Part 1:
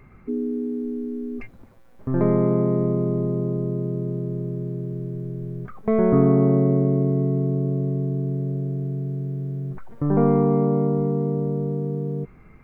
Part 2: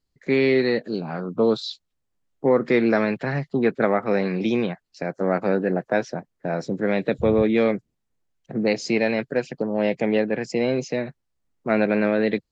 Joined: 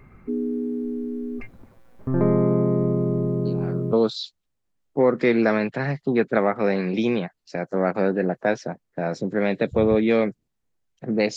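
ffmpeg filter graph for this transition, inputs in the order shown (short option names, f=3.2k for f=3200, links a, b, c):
-filter_complex "[1:a]asplit=2[a][b];[0:a]apad=whole_dur=11.36,atrim=end=11.36,atrim=end=3.932[c];[b]atrim=start=1.398:end=8.83[d];[a]atrim=start=0.92:end=1.4,asetpts=PTS-STARTPTS,volume=-8.5dB,afade=t=in:d=0.004:c=hsin,afade=t=out:st=0.476:d=0.004:c=hsin,adelay=152145S[e];[c][d]acrossfade=d=0.004:c1=hsin:c2=hsin[f];[f][e]amix=inputs=2:normalize=0"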